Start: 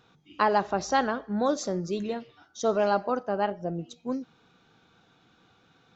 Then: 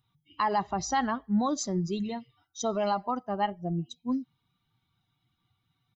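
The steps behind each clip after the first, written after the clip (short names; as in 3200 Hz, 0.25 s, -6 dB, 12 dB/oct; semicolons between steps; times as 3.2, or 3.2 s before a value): per-bin expansion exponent 1.5; limiter -21 dBFS, peak gain reduction 8.5 dB; comb 1 ms, depth 63%; gain +2.5 dB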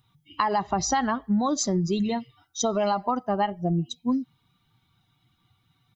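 compressor, threshold -29 dBFS, peak gain reduction 7.5 dB; gain +8.5 dB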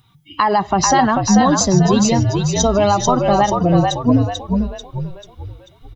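in parallel at 0 dB: limiter -19 dBFS, peak gain reduction 9 dB; on the sum: frequency-shifting echo 0.44 s, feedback 45%, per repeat -55 Hz, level -3.5 dB; gain +4.5 dB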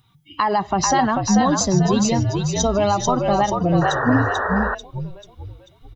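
painted sound noise, 3.81–4.75, 370–1900 Hz -19 dBFS; gain -4 dB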